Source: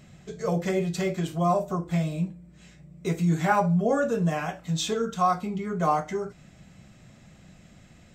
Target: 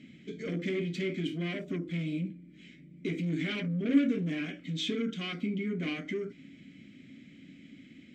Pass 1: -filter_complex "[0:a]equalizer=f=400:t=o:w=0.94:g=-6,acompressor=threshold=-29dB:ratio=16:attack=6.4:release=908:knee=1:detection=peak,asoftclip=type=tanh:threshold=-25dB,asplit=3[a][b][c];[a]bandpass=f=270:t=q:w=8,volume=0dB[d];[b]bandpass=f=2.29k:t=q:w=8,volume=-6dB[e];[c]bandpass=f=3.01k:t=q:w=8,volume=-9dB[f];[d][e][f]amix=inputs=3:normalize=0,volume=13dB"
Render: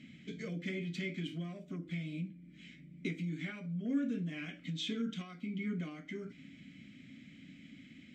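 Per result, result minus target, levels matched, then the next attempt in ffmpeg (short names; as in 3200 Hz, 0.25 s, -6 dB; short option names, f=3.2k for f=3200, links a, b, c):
compressor: peak gain reduction +13.5 dB; 500 Hz band -3.5 dB
-filter_complex "[0:a]equalizer=f=400:t=o:w=0.94:g=-6,asoftclip=type=tanh:threshold=-25dB,asplit=3[a][b][c];[a]bandpass=f=270:t=q:w=8,volume=0dB[d];[b]bandpass=f=2.29k:t=q:w=8,volume=-6dB[e];[c]bandpass=f=3.01k:t=q:w=8,volume=-9dB[f];[d][e][f]amix=inputs=3:normalize=0,volume=13dB"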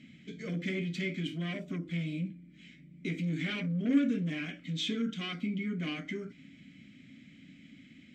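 500 Hz band -4.5 dB
-filter_complex "[0:a]equalizer=f=400:t=o:w=0.94:g=2.5,asoftclip=type=tanh:threshold=-25dB,asplit=3[a][b][c];[a]bandpass=f=270:t=q:w=8,volume=0dB[d];[b]bandpass=f=2.29k:t=q:w=8,volume=-6dB[e];[c]bandpass=f=3.01k:t=q:w=8,volume=-9dB[f];[d][e][f]amix=inputs=3:normalize=0,volume=13dB"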